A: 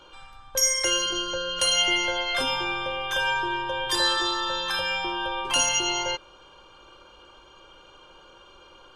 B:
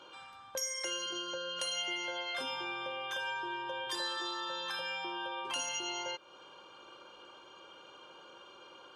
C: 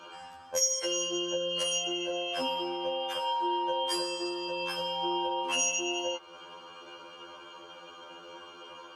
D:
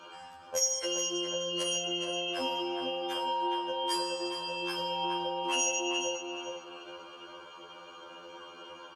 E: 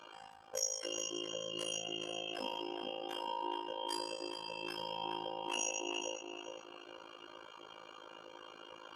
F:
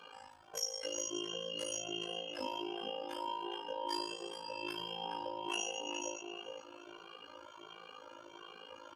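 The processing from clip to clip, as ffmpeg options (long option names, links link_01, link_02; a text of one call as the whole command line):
ffmpeg -i in.wav -af "highshelf=frequency=8700:gain=-5,acompressor=threshold=-37dB:ratio=2.5,highpass=180,volume=-2.5dB" out.wav
ffmpeg -i in.wav -af "equalizer=frequency=3700:width_type=o:width=0.23:gain=-9.5,afftfilt=real='re*2*eq(mod(b,4),0)':imag='im*2*eq(mod(b,4),0)':win_size=2048:overlap=0.75,volume=9dB" out.wav
ffmpeg -i in.wav -filter_complex "[0:a]asplit=2[link_01][link_02];[link_02]adelay=419,lowpass=frequency=3000:poles=1,volume=-5dB,asplit=2[link_03][link_04];[link_04]adelay=419,lowpass=frequency=3000:poles=1,volume=0.36,asplit=2[link_05][link_06];[link_06]adelay=419,lowpass=frequency=3000:poles=1,volume=0.36,asplit=2[link_07][link_08];[link_08]adelay=419,lowpass=frequency=3000:poles=1,volume=0.36[link_09];[link_01][link_03][link_05][link_07][link_09]amix=inputs=5:normalize=0,volume=-1.5dB" out.wav
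ffmpeg -i in.wav -af "areverse,acompressor=mode=upward:threshold=-39dB:ratio=2.5,areverse,tremolo=f=54:d=0.947,volume=-4dB" out.wav
ffmpeg -i in.wav -filter_complex "[0:a]asplit=2[link_01][link_02];[link_02]adelay=2.1,afreqshift=1.4[link_03];[link_01][link_03]amix=inputs=2:normalize=1,volume=3dB" out.wav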